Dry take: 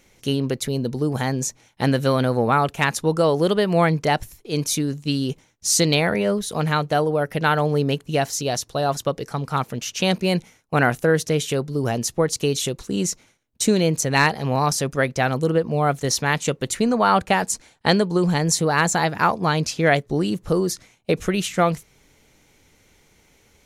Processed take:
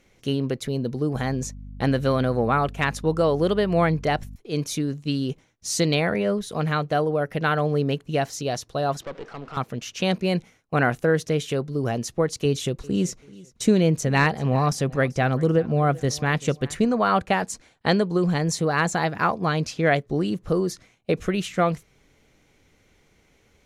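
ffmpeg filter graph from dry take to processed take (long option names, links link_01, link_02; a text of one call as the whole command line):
ffmpeg -i in.wav -filter_complex "[0:a]asettb=1/sr,asplit=3[link_01][link_02][link_03];[link_01]atrim=end=1.154[link_04];[link_02]atrim=start=1.15:end=4.36,asetpts=PTS-STARTPTS,afade=type=in:duration=0.004:curve=qsin,afade=type=out:start_time=3.206:duration=0.004:curve=qsin,agate=range=-27dB:threshold=-41dB:ratio=16:release=100:detection=peak,aeval=exprs='val(0)+0.0178*(sin(2*PI*50*n/s)+sin(2*PI*2*50*n/s)/2+sin(2*PI*3*50*n/s)/3+sin(2*PI*4*50*n/s)/4+sin(2*PI*5*50*n/s)/5)':channel_layout=same[link_05];[link_03]atrim=start=4.356[link_06];[link_04][link_05]acrossfade=duration=0.004:curve1=hsin:curve2=qsin[link_07];[link_07][link_06]acrossfade=duration=0.004:curve1=qsin:curve2=hsin,asettb=1/sr,asplit=3[link_08][link_09][link_10];[link_08]atrim=end=9.014[link_11];[link_09]atrim=start=9.01:end=9.57,asetpts=PTS-STARTPTS,afade=type=in:duration=0.004:curve=qsin,afade=type=out:start_time=0.556:duration=0.004:curve=qsin,aeval=exprs='val(0)+0.5*0.0168*sgn(val(0))':channel_layout=same,highpass=250,lowpass=3800,aeval=exprs='(tanh(22.4*val(0)+0.65)-tanh(0.65))/22.4':channel_layout=same[link_12];[link_10]atrim=start=9.566[link_13];[link_11][link_12]acrossfade=duration=0.004:curve1=hsin:curve2=qsin[link_14];[link_14][link_13]acrossfade=duration=0.004:curve1=qsin:curve2=hsin,asettb=1/sr,asplit=3[link_15][link_16][link_17];[link_15]atrim=end=12.454[link_18];[link_16]atrim=start=12.45:end=16.85,asetpts=PTS-STARTPTS,afade=type=in:duration=0.004:curve=qsin,afade=type=out:start_time=4.396:duration=0.004:curve=qsin,lowshelf=frequency=230:gain=5.5,bandreject=frequency=4200:width=27,aecho=1:1:386|772:0.0841|0.0278,atrim=end_sample=194040[link_19];[link_17]atrim=start=16.846[link_20];[link_18][link_19]acrossfade=duration=0.004:curve1=hsin:curve2=qsin[link_21];[link_21][link_20]acrossfade=duration=0.004:curve1=qsin:curve2=hsin,aemphasis=mode=reproduction:type=cd,bandreject=frequency=890:width=12,volume=-2.5dB" out.wav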